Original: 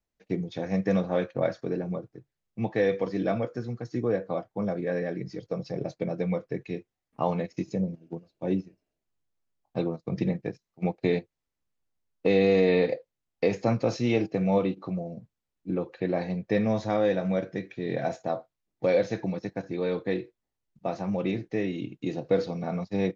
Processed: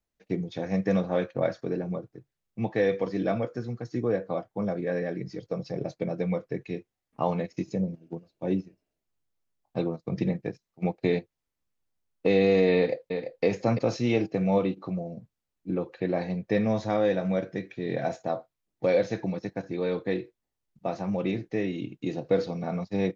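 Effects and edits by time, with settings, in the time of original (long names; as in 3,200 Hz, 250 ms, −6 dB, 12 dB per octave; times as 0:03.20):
0:12.76–0:13.44: delay throw 340 ms, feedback 10%, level −7 dB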